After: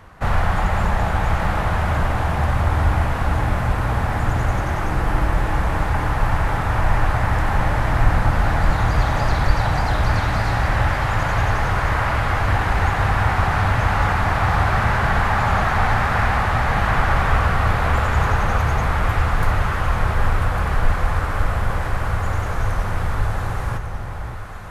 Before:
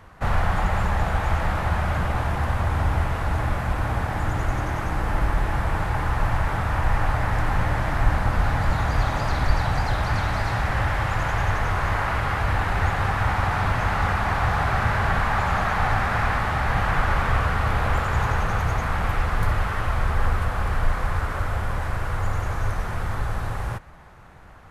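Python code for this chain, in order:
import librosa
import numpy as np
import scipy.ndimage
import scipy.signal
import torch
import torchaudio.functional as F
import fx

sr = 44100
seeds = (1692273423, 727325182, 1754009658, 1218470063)

y = fx.echo_alternate(x, sr, ms=575, hz=950.0, feedback_pct=69, wet_db=-6)
y = y * 10.0 ** (3.0 / 20.0)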